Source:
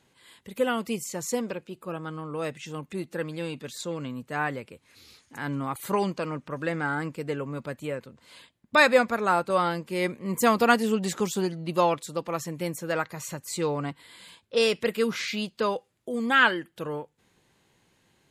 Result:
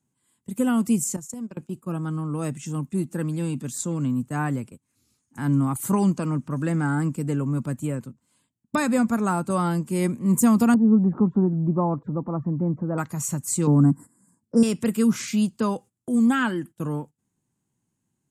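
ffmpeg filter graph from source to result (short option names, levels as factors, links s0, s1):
-filter_complex "[0:a]asettb=1/sr,asplit=3[s0][s1][s2];[s0]atrim=end=1.164[s3];[s1]atrim=start=1.16:end=1.57,asetpts=PTS-STARTPTS,afade=t=in:d=0.004:c=qsin,afade=t=out:st=0.406:d=0.004:c=qsin,agate=range=0.2:threshold=0.0251:ratio=16:release=100:detection=peak,acompressor=threshold=0.0141:ratio=12:attack=3.2:release=140:knee=1:detection=peak[s4];[s2]atrim=start=1.566[s5];[s3][s4]acrossfade=d=0.004:c1=hsin:c2=qsin[s6];[s6][s5]acrossfade=d=0.004:c1=qsin:c2=hsin,asettb=1/sr,asplit=3[s7][s8][s9];[s7]atrim=end=10.744[s10];[s8]atrim=start=10.74:end=12.98,asetpts=PTS-STARTPTS,afade=t=in:d=0.004:c=qsin,afade=t=out:st=2.236:d=0.004:c=qsin,lowpass=f=1100:w=0.5412,lowpass=f=1100:w=1.3066,acompressor=mode=upward:threshold=0.0316:ratio=2.5:attack=3.2:release=140:knee=2.83:detection=peak[s11];[s9]atrim=start=12.976[s12];[s10][s11]acrossfade=d=0.004:c1=hsin:c2=qsin[s13];[s13][s12]acrossfade=d=0.004:c1=qsin:c2=hsin,asettb=1/sr,asplit=3[s14][s15][s16];[s14]atrim=end=13.674[s17];[s15]atrim=start=13.67:end=14.63,asetpts=PTS-STARTPTS,afade=t=in:d=0.004:c=qsin,afade=t=out:st=0.956:d=0.004:c=qsin,asuperstop=centerf=3100:order=8:qfactor=0.86,equalizer=f=230:t=o:w=1.5:g=10[s18];[s16]atrim=start=14.626[s19];[s17][s18]acrossfade=d=0.004:c1=hsin:c2=qsin[s20];[s20][s19]acrossfade=d=0.004:c1=qsin:c2=hsin,agate=range=0.126:threshold=0.00708:ratio=16:detection=peak,equalizer=f=125:t=o:w=1:g=7,equalizer=f=250:t=o:w=1:g=8,equalizer=f=500:t=o:w=1:g=-9,equalizer=f=2000:t=o:w=1:g=-8,equalizer=f=4000:t=o:w=1:g=-11,equalizer=f=8000:t=o:w=1:g=10,acrossover=split=260[s21][s22];[s22]acompressor=threshold=0.0562:ratio=6[s23];[s21][s23]amix=inputs=2:normalize=0,volume=1.58"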